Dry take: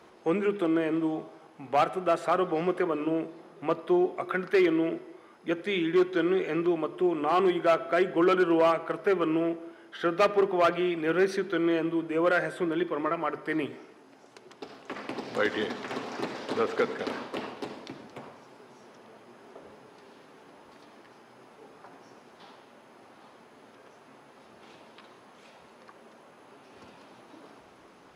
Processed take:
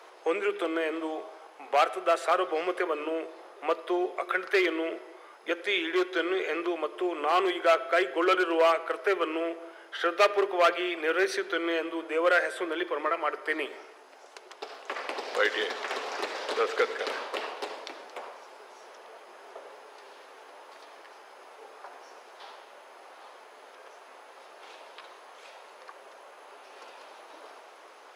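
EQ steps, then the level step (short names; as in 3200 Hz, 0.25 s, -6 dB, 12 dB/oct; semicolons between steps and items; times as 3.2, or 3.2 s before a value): HPF 460 Hz 24 dB/oct; dynamic EQ 830 Hz, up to -6 dB, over -40 dBFS, Q 0.99; +5.5 dB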